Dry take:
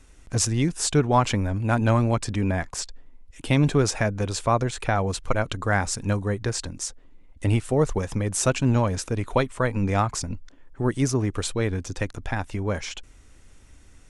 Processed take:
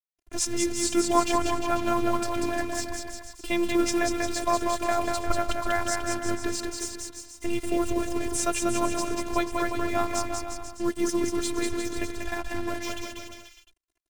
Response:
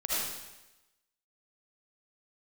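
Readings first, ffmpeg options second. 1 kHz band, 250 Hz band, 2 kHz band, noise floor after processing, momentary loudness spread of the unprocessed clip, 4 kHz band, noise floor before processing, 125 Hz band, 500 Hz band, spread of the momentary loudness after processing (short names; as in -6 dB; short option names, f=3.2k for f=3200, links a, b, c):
-0.5 dB, -1.5 dB, -2.5 dB, -58 dBFS, 10 LU, -1.0 dB, -51 dBFS, -18.0 dB, -2.0 dB, 10 LU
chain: -af "acrusher=bits=5:mix=0:aa=0.5,aecho=1:1:190|351.5|488.8|605.5|704.6:0.631|0.398|0.251|0.158|0.1,afftfilt=real='hypot(re,im)*cos(PI*b)':imag='0':win_size=512:overlap=0.75"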